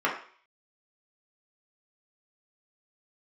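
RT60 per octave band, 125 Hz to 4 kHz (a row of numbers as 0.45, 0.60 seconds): 0.30, 0.40, 0.45, 0.50, 0.50, 0.55 seconds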